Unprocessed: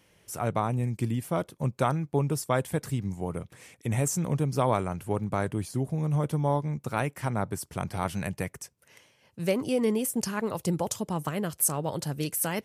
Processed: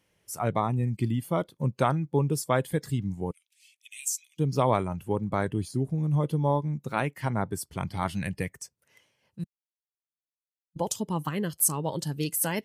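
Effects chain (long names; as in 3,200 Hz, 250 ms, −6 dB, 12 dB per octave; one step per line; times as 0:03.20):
0:03.31–0:04.39: elliptic high-pass filter 2,500 Hz, stop band 80 dB
0:09.44–0:10.76: silence
noise reduction from a noise print of the clip's start 10 dB
level +1.5 dB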